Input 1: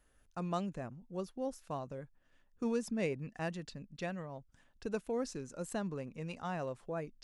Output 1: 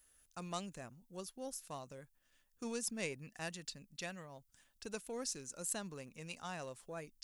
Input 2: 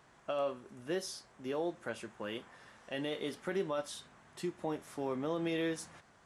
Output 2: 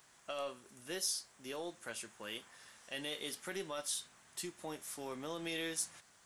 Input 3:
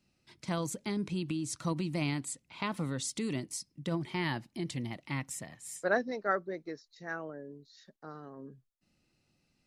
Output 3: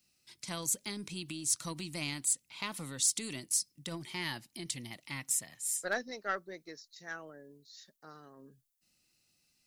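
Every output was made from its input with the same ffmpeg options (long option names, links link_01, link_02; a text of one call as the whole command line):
ffmpeg -i in.wav -af "aeval=exprs='0.168*(cos(1*acos(clip(val(0)/0.168,-1,1)))-cos(1*PI/2))+0.0075*(cos(4*acos(clip(val(0)/0.168,-1,1)))-cos(4*PI/2))':channel_layout=same,crystalizer=i=7.5:c=0,volume=-9dB" out.wav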